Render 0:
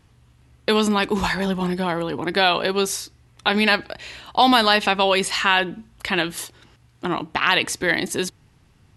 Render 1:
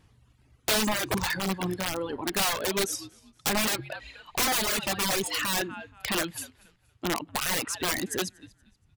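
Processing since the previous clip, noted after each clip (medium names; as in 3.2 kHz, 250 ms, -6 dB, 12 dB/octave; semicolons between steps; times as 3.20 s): frequency-shifting echo 236 ms, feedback 33%, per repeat -78 Hz, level -15.5 dB; integer overflow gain 15 dB; reverb removal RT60 1.7 s; trim -4 dB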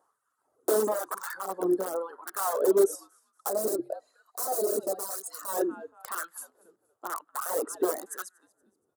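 time-frequency box 3.49–5.48 s, 770–3800 Hz -11 dB; FFT filter 180 Hz 0 dB, 450 Hz +7 dB, 890 Hz -3 dB, 1.3 kHz 0 dB, 2.4 kHz -26 dB, 5 kHz -13 dB, 8.6 kHz 0 dB; LFO high-pass sine 1 Hz 340–1500 Hz; trim -3 dB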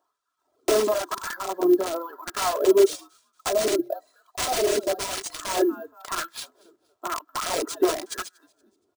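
comb 3 ms, depth 59%; level rider gain up to 8.5 dB; sample-rate reducer 15 kHz, jitter 0%; trim -4.5 dB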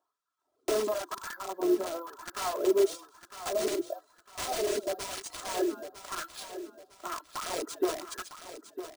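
on a send: feedback delay 954 ms, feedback 35%, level -11.5 dB; on the sum: de-esser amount 35%; trim -7.5 dB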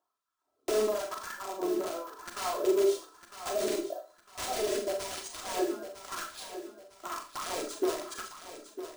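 Schroeder reverb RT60 0.32 s, combs from 29 ms, DRR 3.5 dB; trim -2 dB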